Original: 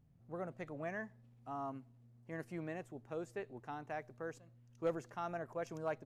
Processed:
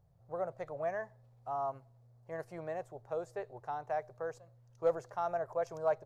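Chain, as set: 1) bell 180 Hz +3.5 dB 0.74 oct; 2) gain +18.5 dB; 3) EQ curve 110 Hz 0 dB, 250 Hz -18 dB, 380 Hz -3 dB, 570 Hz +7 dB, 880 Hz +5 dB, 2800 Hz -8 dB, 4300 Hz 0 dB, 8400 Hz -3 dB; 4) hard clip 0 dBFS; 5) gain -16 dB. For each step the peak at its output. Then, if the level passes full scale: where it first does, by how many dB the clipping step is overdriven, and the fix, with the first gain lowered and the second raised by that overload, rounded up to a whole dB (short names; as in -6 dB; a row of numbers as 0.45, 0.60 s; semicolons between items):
-26.0, -7.5, -4.0, -4.0, -20.0 dBFS; no overload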